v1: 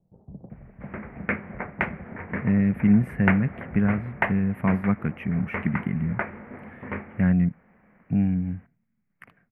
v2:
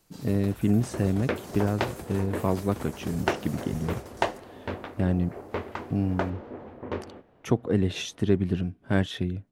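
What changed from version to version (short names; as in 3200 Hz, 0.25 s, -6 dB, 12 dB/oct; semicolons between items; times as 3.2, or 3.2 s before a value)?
speech: entry -2.20 s; first sound: remove steep low-pass 710 Hz; master: remove EQ curve 100 Hz 0 dB, 200 Hz +8 dB, 320 Hz -7 dB, 1000 Hz 0 dB, 2200 Hz +12 dB, 3800 Hz -25 dB, 6800 Hz -30 dB, 13000 Hz +2 dB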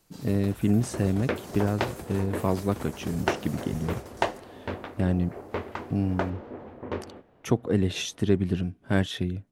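speech: add high shelf 4700 Hz +5.5 dB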